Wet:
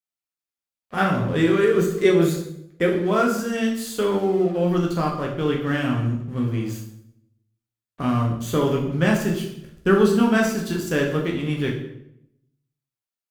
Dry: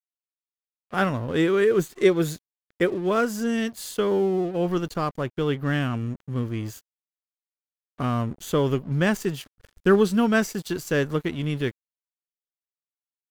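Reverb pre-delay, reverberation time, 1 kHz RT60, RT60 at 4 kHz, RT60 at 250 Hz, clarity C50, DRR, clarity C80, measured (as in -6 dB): 8 ms, 0.75 s, 0.70 s, 0.60 s, 0.95 s, 6.0 dB, -1.5 dB, 9.0 dB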